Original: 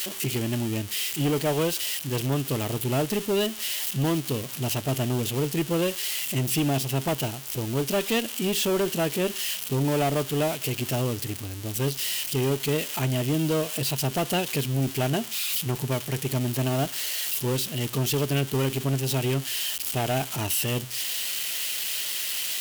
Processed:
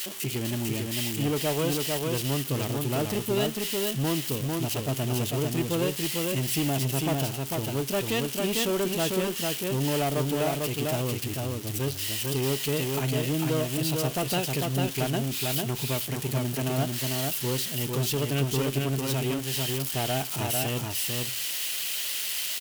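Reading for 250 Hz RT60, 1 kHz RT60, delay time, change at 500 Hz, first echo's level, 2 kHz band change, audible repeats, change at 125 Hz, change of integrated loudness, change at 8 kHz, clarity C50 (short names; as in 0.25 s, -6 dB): none, none, 0.448 s, -1.5 dB, -3.0 dB, -1.5 dB, 1, -1.5 dB, -1.5 dB, -1.5 dB, none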